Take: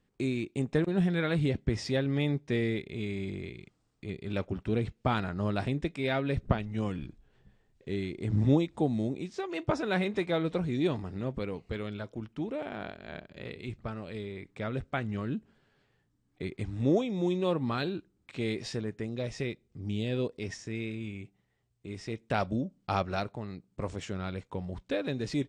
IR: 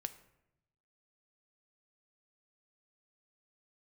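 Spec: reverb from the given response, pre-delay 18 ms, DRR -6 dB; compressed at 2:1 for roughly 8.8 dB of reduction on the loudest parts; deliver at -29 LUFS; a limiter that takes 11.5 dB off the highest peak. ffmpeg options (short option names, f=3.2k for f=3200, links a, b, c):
-filter_complex "[0:a]acompressor=threshold=-36dB:ratio=2,alimiter=level_in=7dB:limit=-24dB:level=0:latency=1,volume=-7dB,asplit=2[a][b];[1:a]atrim=start_sample=2205,adelay=18[c];[b][c]afir=irnorm=-1:irlink=0,volume=8dB[d];[a][d]amix=inputs=2:normalize=0,volume=5dB"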